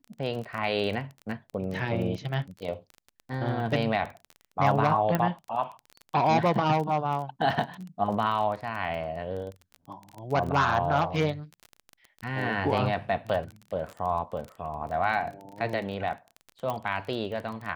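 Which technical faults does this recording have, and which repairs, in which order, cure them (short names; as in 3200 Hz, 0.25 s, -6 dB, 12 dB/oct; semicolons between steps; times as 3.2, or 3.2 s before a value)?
crackle 21/s -33 dBFS
5.15 pop -12 dBFS
16.7 pop -18 dBFS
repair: de-click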